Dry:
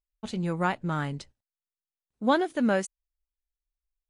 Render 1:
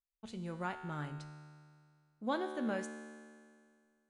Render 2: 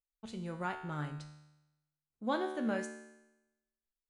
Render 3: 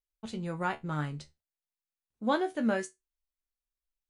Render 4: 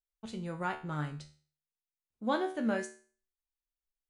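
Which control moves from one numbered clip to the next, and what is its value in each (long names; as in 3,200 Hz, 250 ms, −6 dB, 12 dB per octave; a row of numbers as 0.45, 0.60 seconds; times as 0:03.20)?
tuned comb filter, decay: 2.1, 0.95, 0.18, 0.41 seconds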